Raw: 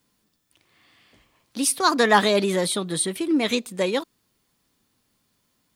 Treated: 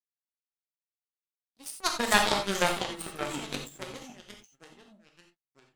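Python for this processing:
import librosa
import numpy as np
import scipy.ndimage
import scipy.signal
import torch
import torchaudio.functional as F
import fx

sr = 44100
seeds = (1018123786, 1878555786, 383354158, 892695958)

y = fx.echo_pitch(x, sr, ms=94, semitones=-3, count=2, db_per_echo=-3.0)
y = fx.power_curve(y, sr, exponent=3.0)
y = fx.rev_gated(y, sr, seeds[0], gate_ms=110, shape='flat', drr_db=2.5)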